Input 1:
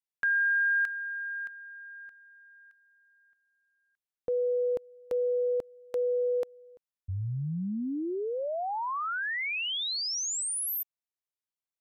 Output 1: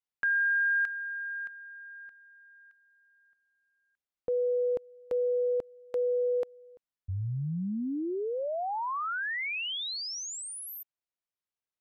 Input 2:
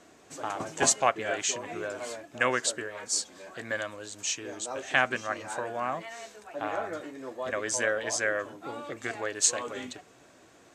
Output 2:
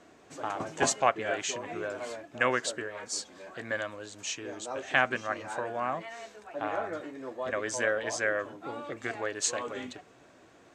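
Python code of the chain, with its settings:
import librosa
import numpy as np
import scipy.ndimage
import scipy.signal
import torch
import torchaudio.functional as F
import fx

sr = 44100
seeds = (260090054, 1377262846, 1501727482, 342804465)

y = fx.high_shelf(x, sr, hz=6000.0, db=-11.0)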